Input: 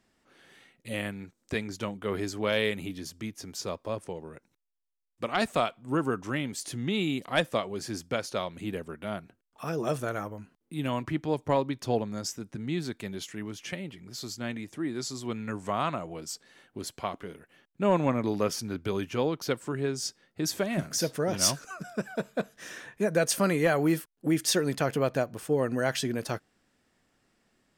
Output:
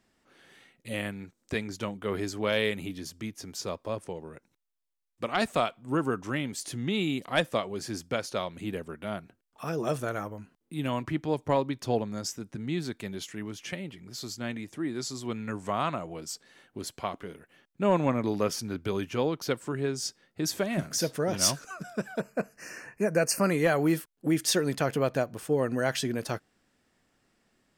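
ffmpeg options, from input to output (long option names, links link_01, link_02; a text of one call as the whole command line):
ffmpeg -i in.wav -filter_complex "[0:a]asplit=3[link_01][link_02][link_03];[link_01]afade=type=out:start_time=22.19:duration=0.02[link_04];[link_02]asuperstop=centerf=3500:order=12:qfactor=2.5,afade=type=in:start_time=22.19:duration=0.02,afade=type=out:start_time=23.5:duration=0.02[link_05];[link_03]afade=type=in:start_time=23.5:duration=0.02[link_06];[link_04][link_05][link_06]amix=inputs=3:normalize=0" out.wav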